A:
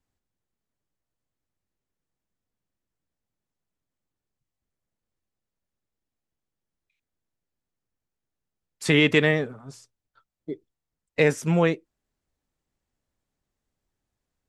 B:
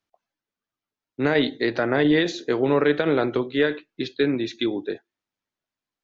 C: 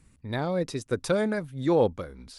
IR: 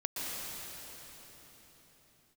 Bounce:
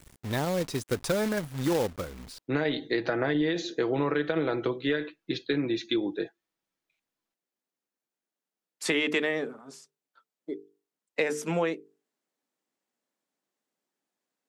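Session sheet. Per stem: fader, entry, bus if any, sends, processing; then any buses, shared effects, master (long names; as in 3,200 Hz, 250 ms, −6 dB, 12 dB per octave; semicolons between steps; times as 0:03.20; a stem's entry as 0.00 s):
−0.5 dB, 0.00 s, no send, high-pass filter 220 Hz 24 dB per octave; mains-hum notches 50/100/150/200/250/300/350/400/450 Hz
−2.5 dB, 1.30 s, no send, comb filter 6.1 ms, depth 43%
+1.0 dB, 0.00 s, no send, log-companded quantiser 4 bits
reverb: not used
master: downward compressor, threshold −23 dBFS, peak gain reduction 8 dB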